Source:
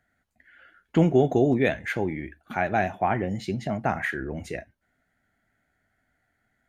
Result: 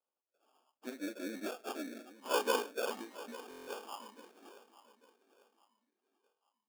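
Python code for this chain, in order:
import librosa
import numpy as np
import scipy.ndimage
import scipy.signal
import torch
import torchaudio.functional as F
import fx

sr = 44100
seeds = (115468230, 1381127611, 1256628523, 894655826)

p1 = fx.pitch_bins(x, sr, semitones=-6.5)
p2 = fx.doppler_pass(p1, sr, speed_mps=39, closest_m=15.0, pass_at_s=2.37)
p3 = fx.low_shelf(p2, sr, hz=380.0, db=-11.0)
p4 = fx.sample_hold(p3, sr, seeds[0], rate_hz=2000.0, jitter_pct=0)
p5 = fx.brickwall_highpass(p4, sr, low_hz=210.0)
p6 = p5 + fx.echo_feedback(p5, sr, ms=846, feedback_pct=34, wet_db=-16.5, dry=0)
p7 = fx.buffer_glitch(p6, sr, at_s=(3.49,), block=1024, repeats=7)
y = p7 * librosa.db_to_amplitude(-1.0)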